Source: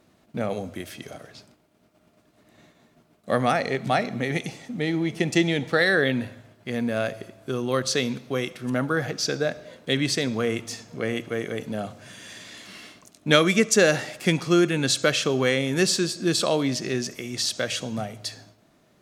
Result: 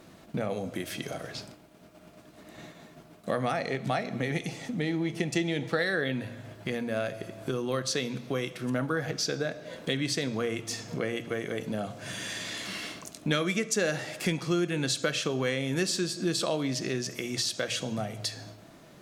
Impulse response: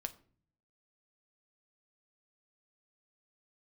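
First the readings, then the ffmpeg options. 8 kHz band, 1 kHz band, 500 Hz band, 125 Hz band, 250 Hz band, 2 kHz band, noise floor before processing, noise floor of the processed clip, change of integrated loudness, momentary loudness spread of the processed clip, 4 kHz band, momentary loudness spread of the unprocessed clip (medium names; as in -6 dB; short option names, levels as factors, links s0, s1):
-5.5 dB, -7.0 dB, -6.5 dB, -4.5 dB, -6.0 dB, -7.0 dB, -62 dBFS, -53 dBFS, -6.5 dB, 10 LU, -5.5 dB, 17 LU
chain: -filter_complex "[0:a]bandreject=f=60:t=h:w=6,bandreject=f=120:t=h:w=6,acompressor=threshold=0.00794:ratio=2.5,asplit=2[s0][s1];[1:a]atrim=start_sample=2205[s2];[s1][s2]afir=irnorm=-1:irlink=0,volume=2[s3];[s0][s3]amix=inputs=2:normalize=0"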